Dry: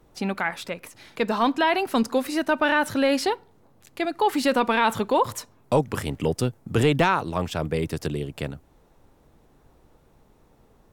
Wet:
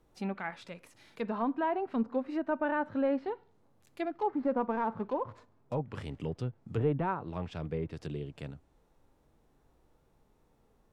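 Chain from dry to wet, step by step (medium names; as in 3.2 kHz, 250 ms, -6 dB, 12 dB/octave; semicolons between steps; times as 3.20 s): 4.06–5.75 s: median filter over 15 samples; harmonic-percussive split percussive -8 dB; low-pass that closes with the level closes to 1.2 kHz, closed at -21 dBFS; trim -7.5 dB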